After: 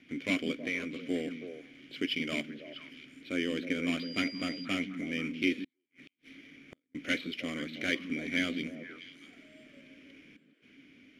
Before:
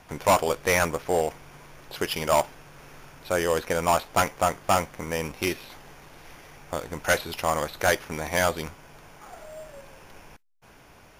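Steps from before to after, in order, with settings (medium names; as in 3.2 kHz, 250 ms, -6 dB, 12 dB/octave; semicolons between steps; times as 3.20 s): 0.66–1.10 s: compression 6:1, threshold -26 dBFS, peak gain reduction 8.5 dB; vowel filter i; repeats whose band climbs or falls 161 ms, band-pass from 190 Hz, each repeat 1.4 oct, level -4 dB; 3.99–4.64 s: whistle 4.8 kHz -52 dBFS; 5.64–6.95 s: inverted gate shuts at -45 dBFS, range -41 dB; trim +8 dB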